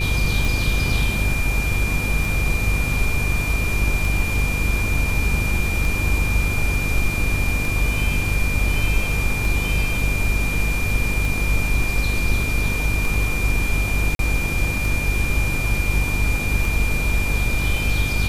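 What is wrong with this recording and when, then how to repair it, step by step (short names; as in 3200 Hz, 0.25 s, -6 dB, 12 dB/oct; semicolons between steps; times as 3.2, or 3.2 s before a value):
buzz 50 Hz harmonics 10 -24 dBFS
tick 33 1/3 rpm
tone 2400 Hz -25 dBFS
14.15–14.19 gap 42 ms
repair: de-click; notch 2400 Hz, Q 30; de-hum 50 Hz, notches 10; interpolate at 14.15, 42 ms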